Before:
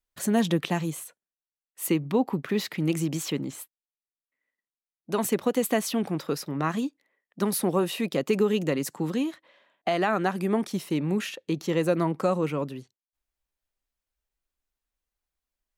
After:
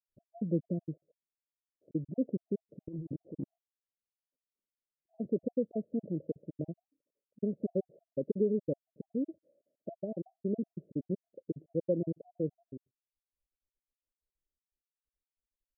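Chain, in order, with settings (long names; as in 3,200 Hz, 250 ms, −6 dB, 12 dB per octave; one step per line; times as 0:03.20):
time-frequency cells dropped at random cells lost 46%
Butterworth low-pass 620 Hz 96 dB per octave
0:02.88–0:05.15: compressor whose output falls as the input rises −34 dBFS, ratio −1
level −5.5 dB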